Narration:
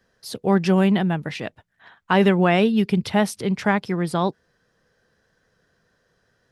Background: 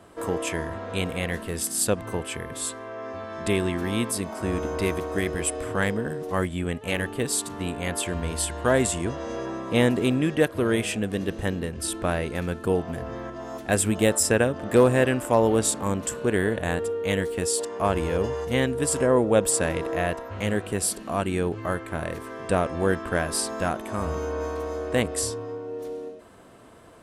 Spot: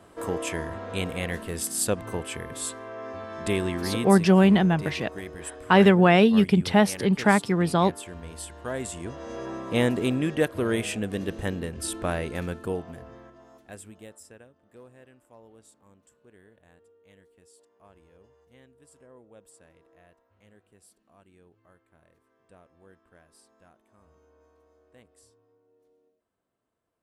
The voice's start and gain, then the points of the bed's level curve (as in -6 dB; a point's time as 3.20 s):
3.60 s, +0.5 dB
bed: 3.94 s -2 dB
4.39 s -11.5 dB
8.73 s -11.5 dB
9.53 s -2.5 dB
12.43 s -2.5 dB
14.58 s -32.5 dB